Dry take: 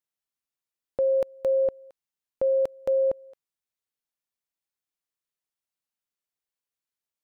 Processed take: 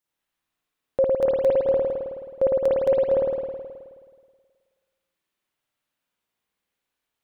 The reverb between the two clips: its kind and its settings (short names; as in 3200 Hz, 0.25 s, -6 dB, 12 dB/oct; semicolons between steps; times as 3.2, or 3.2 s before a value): spring tank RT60 1.7 s, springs 53 ms, chirp 30 ms, DRR -7.5 dB; gain +4.5 dB